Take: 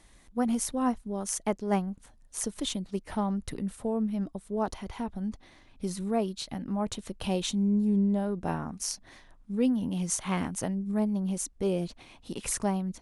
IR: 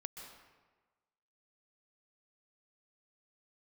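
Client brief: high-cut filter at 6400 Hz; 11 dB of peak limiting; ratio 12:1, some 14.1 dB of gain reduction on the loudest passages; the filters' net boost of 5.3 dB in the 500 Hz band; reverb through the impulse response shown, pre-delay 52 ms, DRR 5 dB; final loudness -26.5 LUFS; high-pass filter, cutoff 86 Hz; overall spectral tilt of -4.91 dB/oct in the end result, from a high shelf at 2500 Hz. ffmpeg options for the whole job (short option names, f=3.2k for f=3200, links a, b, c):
-filter_complex "[0:a]highpass=86,lowpass=6.4k,equalizer=f=500:t=o:g=6.5,highshelf=f=2.5k:g=5,acompressor=threshold=-33dB:ratio=12,alimiter=level_in=6.5dB:limit=-24dB:level=0:latency=1,volume=-6.5dB,asplit=2[a][b];[1:a]atrim=start_sample=2205,adelay=52[c];[b][c]afir=irnorm=-1:irlink=0,volume=-2dB[d];[a][d]amix=inputs=2:normalize=0,volume=12dB"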